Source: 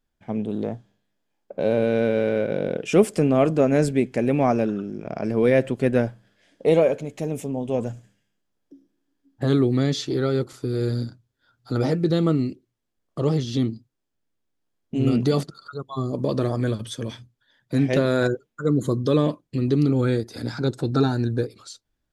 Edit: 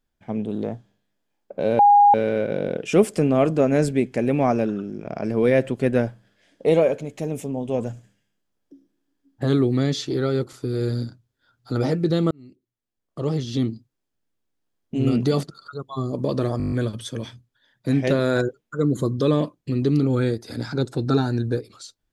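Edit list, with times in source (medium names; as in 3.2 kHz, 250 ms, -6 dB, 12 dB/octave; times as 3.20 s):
1.79–2.14 s: bleep 818 Hz -9.5 dBFS
12.31–13.63 s: fade in
16.58 s: stutter 0.02 s, 8 plays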